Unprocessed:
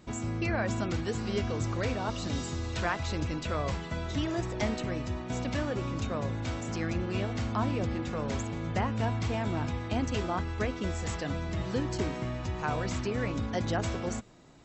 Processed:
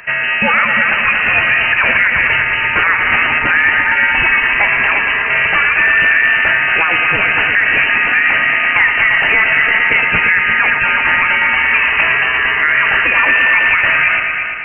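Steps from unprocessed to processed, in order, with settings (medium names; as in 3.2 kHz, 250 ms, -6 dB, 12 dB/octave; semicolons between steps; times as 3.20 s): high-pass 440 Hz 6 dB/octave; peaking EQ 1.1 kHz +14 dB 1.1 oct; compression 5:1, threshold -26 dBFS, peak gain reduction 9 dB; multi-head delay 115 ms, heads all three, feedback 52%, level -11 dB; on a send at -17.5 dB: reverberation RT60 1.3 s, pre-delay 10 ms; on the sum: frequency inversion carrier 2.9 kHz; loudness maximiser +20.5 dB; trim -1 dB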